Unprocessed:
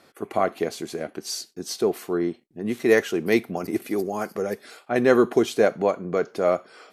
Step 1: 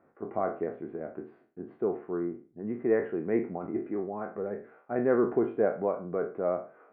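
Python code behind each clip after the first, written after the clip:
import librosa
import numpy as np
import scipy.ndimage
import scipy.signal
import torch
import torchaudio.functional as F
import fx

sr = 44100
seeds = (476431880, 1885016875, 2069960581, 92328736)

y = fx.spec_trails(x, sr, decay_s=0.38)
y = scipy.signal.sosfilt(scipy.signal.bessel(8, 1100.0, 'lowpass', norm='mag', fs=sr, output='sos'), y)
y = F.gain(torch.from_numpy(y), -7.5).numpy()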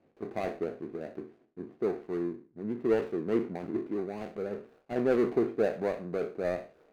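y = scipy.ndimage.median_filter(x, 41, mode='constant')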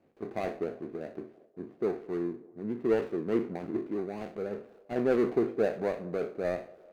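y = fx.echo_banded(x, sr, ms=196, feedback_pct=67, hz=590.0, wet_db=-21.0)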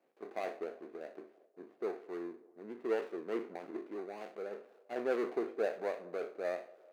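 y = scipy.signal.sosfilt(scipy.signal.butter(2, 450.0, 'highpass', fs=sr, output='sos'), x)
y = F.gain(torch.from_numpy(y), -3.5).numpy()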